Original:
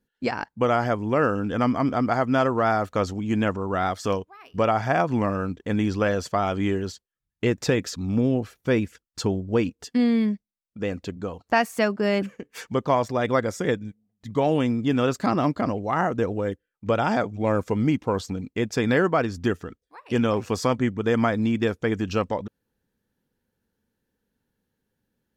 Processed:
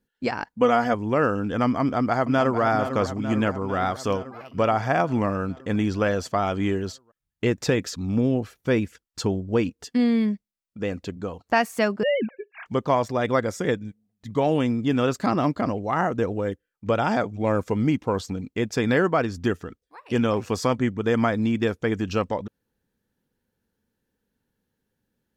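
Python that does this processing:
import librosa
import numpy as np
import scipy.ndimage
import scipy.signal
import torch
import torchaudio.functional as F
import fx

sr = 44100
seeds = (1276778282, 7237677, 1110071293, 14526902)

y = fx.comb(x, sr, ms=4.1, depth=0.65, at=(0.46, 0.94))
y = fx.echo_throw(y, sr, start_s=1.81, length_s=0.8, ms=450, feedback_pct=70, wet_db=-9.5)
y = fx.sine_speech(y, sr, at=(12.03, 12.66))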